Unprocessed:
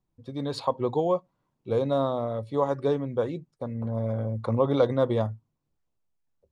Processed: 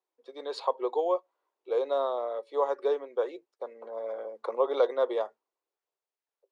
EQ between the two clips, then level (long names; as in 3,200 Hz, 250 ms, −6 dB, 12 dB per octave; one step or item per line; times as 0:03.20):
elliptic high-pass filter 390 Hz, stop band 80 dB
high-frequency loss of the air 54 metres
−1.0 dB